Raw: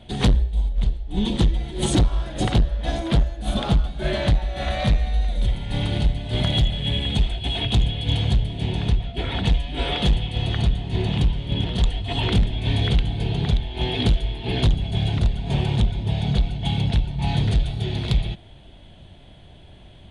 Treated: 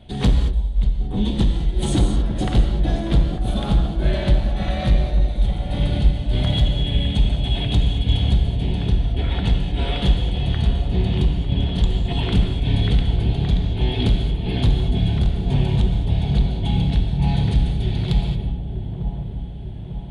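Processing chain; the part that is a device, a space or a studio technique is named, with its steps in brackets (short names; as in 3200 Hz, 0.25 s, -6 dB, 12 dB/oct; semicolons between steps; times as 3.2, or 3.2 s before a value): exciter from parts (in parallel at -12.5 dB: HPF 4800 Hz 12 dB/oct + soft clip -30.5 dBFS, distortion -14 dB + HPF 4500 Hz 24 dB/oct); on the sum: low shelf 380 Hz +5 dB; dark delay 0.9 s, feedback 58%, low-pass 850 Hz, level -7 dB; non-linear reverb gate 0.25 s flat, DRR 4.5 dB; gain -4 dB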